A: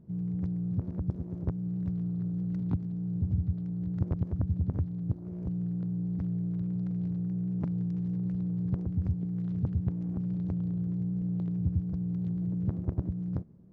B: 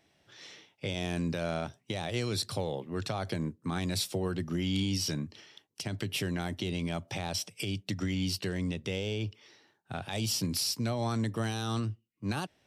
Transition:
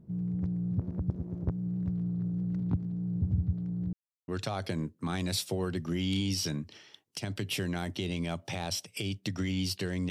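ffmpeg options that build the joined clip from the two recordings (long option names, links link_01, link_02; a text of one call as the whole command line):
ffmpeg -i cue0.wav -i cue1.wav -filter_complex "[0:a]apad=whole_dur=10.1,atrim=end=10.1,asplit=2[link_01][link_02];[link_01]atrim=end=3.93,asetpts=PTS-STARTPTS,afade=type=out:start_time=3.926:duration=0.004:curve=hsin[link_03];[link_02]atrim=start=3.93:end=4.28,asetpts=PTS-STARTPTS,volume=0[link_04];[1:a]atrim=start=2.91:end=8.73,asetpts=PTS-STARTPTS,afade=type=in:duration=0.004:curve=hsin[link_05];[link_03][link_04][link_05]concat=n=3:v=0:a=1" out.wav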